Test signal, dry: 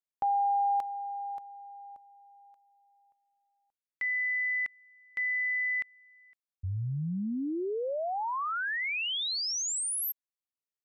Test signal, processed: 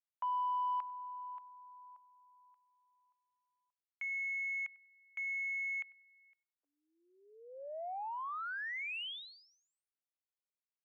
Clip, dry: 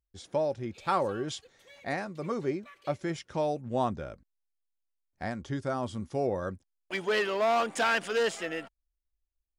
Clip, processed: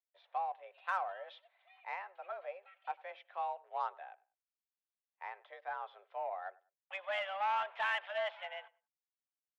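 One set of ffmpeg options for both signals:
ffmpeg -i in.wav -filter_complex "[0:a]asplit=2[link_01][link_02];[link_02]adelay=98,lowpass=frequency=2600:poles=1,volume=-22dB,asplit=2[link_03][link_04];[link_04]adelay=98,lowpass=frequency=2600:poles=1,volume=0.24[link_05];[link_01][link_03][link_05]amix=inputs=3:normalize=0,highpass=frequency=420:width_type=q:width=0.5412,highpass=frequency=420:width_type=q:width=1.307,lowpass=frequency=3100:width_type=q:width=0.5176,lowpass=frequency=3100:width_type=q:width=0.7071,lowpass=frequency=3100:width_type=q:width=1.932,afreqshift=190,aeval=exprs='0.168*(cos(1*acos(clip(val(0)/0.168,-1,1)))-cos(1*PI/2))+0.00299*(cos(7*acos(clip(val(0)/0.168,-1,1)))-cos(7*PI/2))':channel_layout=same,volume=-7.5dB" out.wav

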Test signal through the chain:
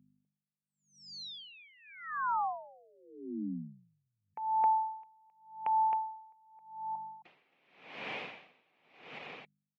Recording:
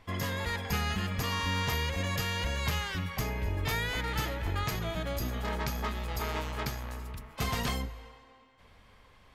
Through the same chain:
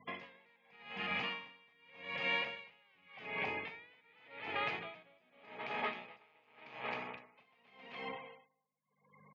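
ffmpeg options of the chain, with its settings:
ffmpeg -i in.wav -af "afftfilt=real='re*gte(hypot(re,im),0.00282)':imag='im*gte(hypot(re,im),0.00282)':win_size=1024:overlap=0.75,highshelf=frequency=2200:gain=11,dynaudnorm=framelen=240:gausssize=9:maxgain=6.5dB,alimiter=limit=-17dB:level=0:latency=1:release=478,acompressor=threshold=-38dB:ratio=2,aeval=exprs='val(0)+0.00251*(sin(2*PI*50*n/s)+sin(2*PI*2*50*n/s)/2+sin(2*PI*3*50*n/s)/3+sin(2*PI*4*50*n/s)/4+sin(2*PI*5*50*n/s)/5)':channel_layout=same,highpass=frequency=180:width=0.5412,highpass=frequency=180:width=1.3066,equalizer=frequency=200:width_type=q:width=4:gain=-4,equalizer=frequency=320:width_type=q:width=4:gain=-3,equalizer=frequency=470:width_type=q:width=4:gain=4,equalizer=frequency=760:width_type=q:width=4:gain=6,equalizer=frequency=1500:width_type=q:width=4:gain=-4,equalizer=frequency=2400:width_type=q:width=4:gain=8,lowpass=frequency=2900:width=0.5412,lowpass=frequency=2900:width=1.3066,aecho=1:1:266:0.668,aeval=exprs='val(0)*pow(10,-34*(0.5-0.5*cos(2*PI*0.86*n/s))/20)':channel_layout=same" out.wav

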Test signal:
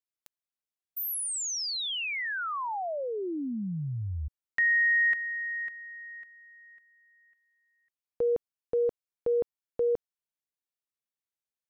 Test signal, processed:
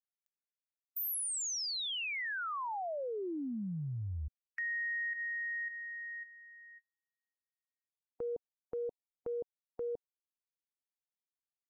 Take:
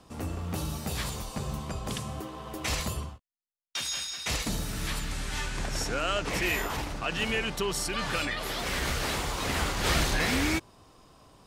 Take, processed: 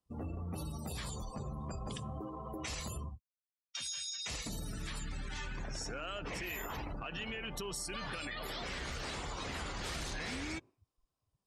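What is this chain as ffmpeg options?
ffmpeg -i in.wav -af "afftdn=noise_reduction=35:noise_floor=-39,highshelf=frequency=6800:gain=10,acompressor=threshold=-36dB:ratio=6:attack=1.2:release=97:knee=6:detection=rms" out.wav

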